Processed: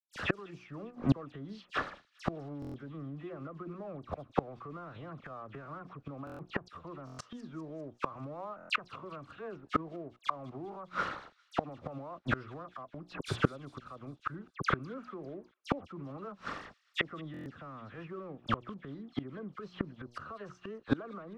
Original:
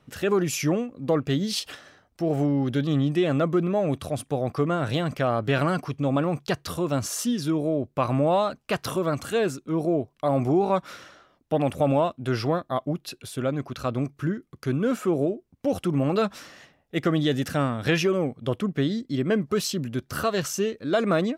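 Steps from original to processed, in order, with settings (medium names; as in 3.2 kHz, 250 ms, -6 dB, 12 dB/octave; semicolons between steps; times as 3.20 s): high-pass 42 Hz 24 dB/octave; hum notches 60/120/180/240/300/360 Hz; low-pass that closes with the level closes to 2 kHz, closed at -19 dBFS; peaking EQ 1.2 kHz +11.5 dB 0.62 oct; peak limiter -17 dBFS, peak gain reduction 11 dB; level rider gain up to 5.5 dB; crossover distortion -38 dBFS; phase dispersion lows, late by 73 ms, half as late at 2.5 kHz; inverted gate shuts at -20 dBFS, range -29 dB; tape spacing loss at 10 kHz 22 dB; feedback echo behind a high-pass 200 ms, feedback 59%, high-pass 3.1 kHz, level -18 dB; buffer glitch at 2.60/6.25/7.05/8.56/17.32 s, samples 1024, times 5; trim +7.5 dB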